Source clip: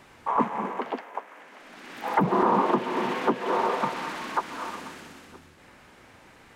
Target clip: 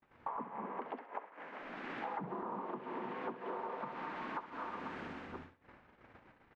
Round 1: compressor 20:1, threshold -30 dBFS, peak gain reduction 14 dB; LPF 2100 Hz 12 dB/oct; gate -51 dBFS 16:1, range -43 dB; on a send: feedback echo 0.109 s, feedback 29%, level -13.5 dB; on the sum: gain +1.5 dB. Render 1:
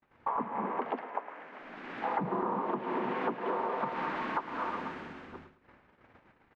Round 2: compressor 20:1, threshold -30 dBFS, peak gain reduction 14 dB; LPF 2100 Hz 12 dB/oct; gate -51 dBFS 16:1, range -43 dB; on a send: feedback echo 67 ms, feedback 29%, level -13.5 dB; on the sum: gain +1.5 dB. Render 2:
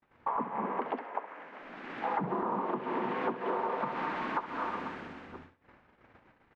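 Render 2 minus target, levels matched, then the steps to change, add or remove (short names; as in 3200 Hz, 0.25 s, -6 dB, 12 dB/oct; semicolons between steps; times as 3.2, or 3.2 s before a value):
compressor: peak gain reduction -9 dB
change: compressor 20:1, threshold -39.5 dBFS, peak gain reduction 23 dB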